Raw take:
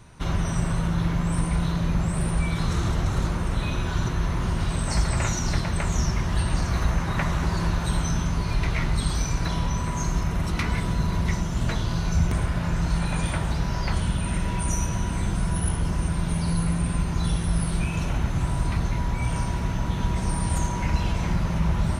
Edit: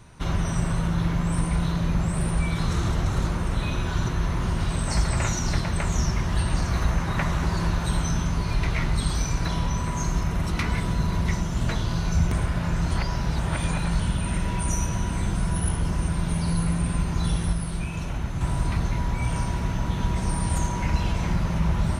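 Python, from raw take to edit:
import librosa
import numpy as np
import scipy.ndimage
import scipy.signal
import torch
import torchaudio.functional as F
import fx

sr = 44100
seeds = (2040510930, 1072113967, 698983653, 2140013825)

y = fx.edit(x, sr, fx.reverse_span(start_s=12.91, length_s=1.08),
    fx.clip_gain(start_s=17.53, length_s=0.88, db=-4.0), tone=tone)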